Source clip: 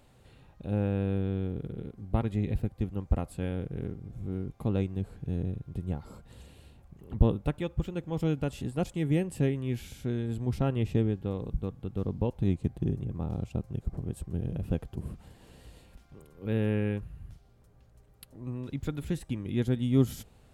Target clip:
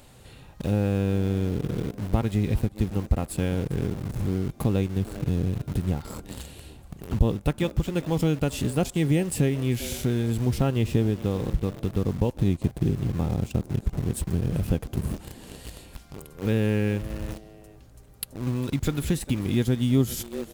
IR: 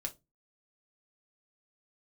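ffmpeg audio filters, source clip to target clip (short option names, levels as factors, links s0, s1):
-filter_complex "[0:a]highshelf=f=3700:g=8,asplit=3[s0][s1][s2];[s1]adelay=398,afreqshift=110,volume=0.0841[s3];[s2]adelay=796,afreqshift=220,volume=0.0285[s4];[s0][s3][s4]amix=inputs=3:normalize=0,asplit=2[s5][s6];[s6]acrusher=bits=6:mix=0:aa=0.000001,volume=0.501[s7];[s5][s7]amix=inputs=2:normalize=0,acompressor=threshold=0.0251:ratio=2,volume=2.51"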